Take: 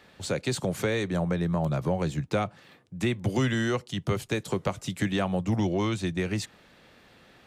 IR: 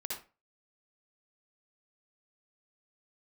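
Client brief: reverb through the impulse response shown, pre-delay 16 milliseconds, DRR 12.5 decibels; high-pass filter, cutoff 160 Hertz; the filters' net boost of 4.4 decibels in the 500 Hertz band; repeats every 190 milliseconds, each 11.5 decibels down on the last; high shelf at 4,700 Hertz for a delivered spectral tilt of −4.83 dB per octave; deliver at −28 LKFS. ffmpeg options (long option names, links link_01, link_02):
-filter_complex "[0:a]highpass=160,equalizer=frequency=500:width_type=o:gain=5.5,highshelf=frequency=4700:gain=7.5,aecho=1:1:190|380|570:0.266|0.0718|0.0194,asplit=2[link_01][link_02];[1:a]atrim=start_sample=2205,adelay=16[link_03];[link_02][link_03]afir=irnorm=-1:irlink=0,volume=-13.5dB[link_04];[link_01][link_04]amix=inputs=2:normalize=0,volume=-1dB"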